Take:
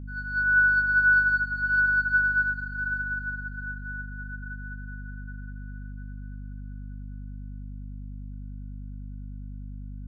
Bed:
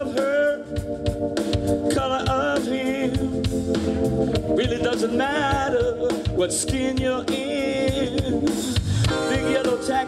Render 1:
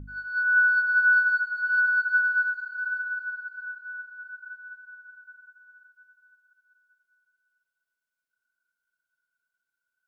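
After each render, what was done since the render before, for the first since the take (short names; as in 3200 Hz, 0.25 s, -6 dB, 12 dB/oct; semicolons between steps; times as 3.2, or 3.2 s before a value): de-hum 50 Hz, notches 6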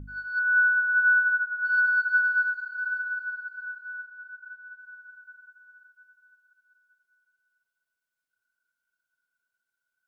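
0.39–1.65 spectral contrast raised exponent 3.5; 4.06–4.79 high shelf 2400 Hz -7.5 dB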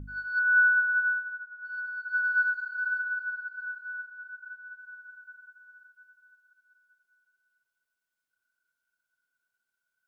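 0.79–2.44 dip -13.5 dB, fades 0.44 s; 3–3.59 air absorption 70 m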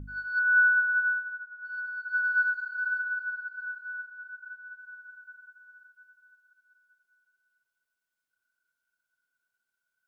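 nothing audible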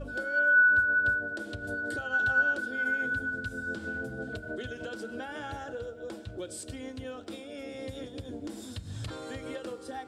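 add bed -17.5 dB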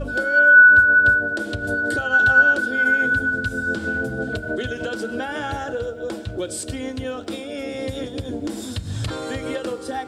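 gain +11.5 dB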